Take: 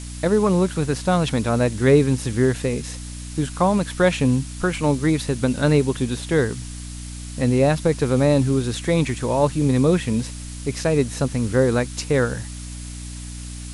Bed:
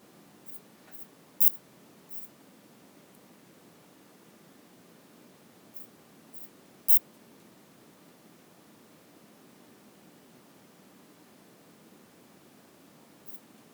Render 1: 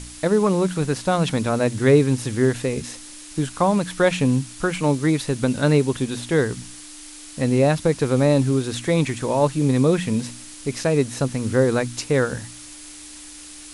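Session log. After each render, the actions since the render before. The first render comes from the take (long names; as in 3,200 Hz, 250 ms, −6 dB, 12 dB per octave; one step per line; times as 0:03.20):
hum removal 60 Hz, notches 4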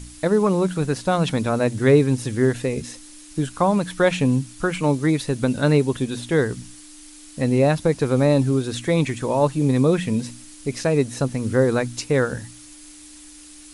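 broadband denoise 6 dB, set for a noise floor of −40 dBFS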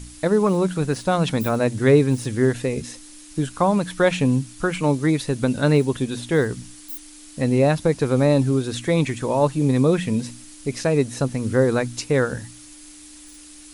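mix in bed −15 dB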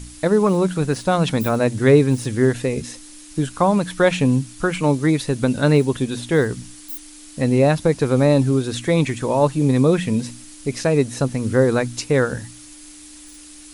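level +2 dB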